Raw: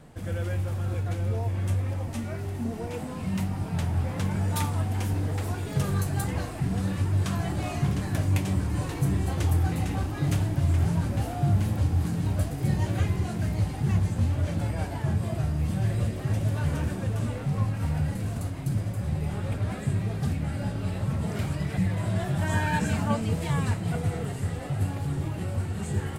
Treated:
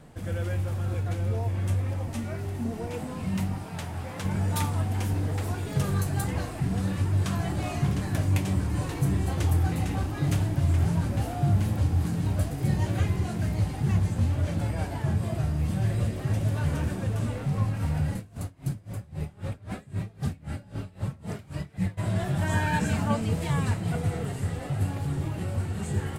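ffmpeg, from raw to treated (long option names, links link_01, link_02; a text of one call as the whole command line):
ffmpeg -i in.wav -filter_complex "[0:a]asettb=1/sr,asplit=3[link_01][link_02][link_03];[link_01]atrim=end=3.584[link_04];[link_02]atrim=start=3.58:end=4.25,asetpts=PTS-STARTPTS,afade=type=in:duration=0.004:curve=qsin,afade=type=out:start_time=0.666:duration=0.004:curve=qsin,lowshelf=frequency=290:gain=-10[link_05];[link_03]atrim=start=4.246[link_06];[link_04][link_05]acrossfade=duration=0.004:curve1=hsin:curve2=qsin[link_07];[link_07][link_06]acrossfade=duration=0.004:curve1=qsin:curve2=hsin,asplit=3[link_08][link_09][link_10];[link_08]afade=type=out:start_time=18.18:duration=0.02[link_11];[link_09]aeval=exprs='val(0)*pow(10,-24*(0.5-0.5*cos(2*PI*3.8*n/s))/20)':channel_layout=same,afade=type=in:start_time=18.18:duration=0.02,afade=type=out:start_time=21.97:duration=0.02[link_12];[link_10]afade=type=in:start_time=21.97:duration=0.02[link_13];[link_11][link_12][link_13]amix=inputs=3:normalize=0" out.wav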